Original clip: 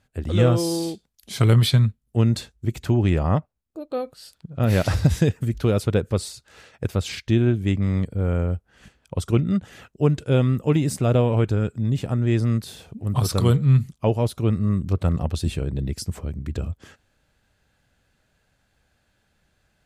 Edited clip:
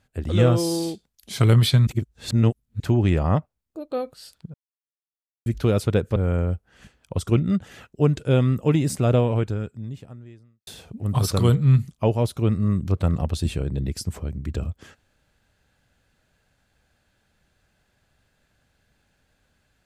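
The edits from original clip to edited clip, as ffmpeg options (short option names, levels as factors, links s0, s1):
-filter_complex "[0:a]asplit=7[s0][s1][s2][s3][s4][s5][s6];[s0]atrim=end=1.872[s7];[s1]atrim=start=1.868:end=2.802,asetpts=PTS-STARTPTS,areverse[s8];[s2]atrim=start=2.798:end=4.54,asetpts=PTS-STARTPTS,afade=t=out:st=1.738:d=0.004:c=hsin[s9];[s3]atrim=start=4.54:end=5.46,asetpts=PTS-STARTPTS,volume=0[s10];[s4]atrim=start=5.46:end=6.162,asetpts=PTS-STARTPTS,afade=t=in:d=0.004:c=hsin[s11];[s5]atrim=start=8.168:end=12.68,asetpts=PTS-STARTPTS,afade=t=out:st=3.012:d=1.5:c=qua[s12];[s6]atrim=start=12.68,asetpts=PTS-STARTPTS,afade=t=in:d=0.004:c=hsin[s13];[s7][s8]acrossfade=d=0.004:c1=hsin:c2=hsin[s14];[s9][s10][s11]concat=n=3:v=0:a=1[s15];[s14][s15]acrossfade=d=0.004:c1=hsin:c2=hsin[s16];[s12][s13]concat=n=2:v=0:a=1[s17];[s16][s17]acrossfade=d=0.004:c1=hsin:c2=hsin"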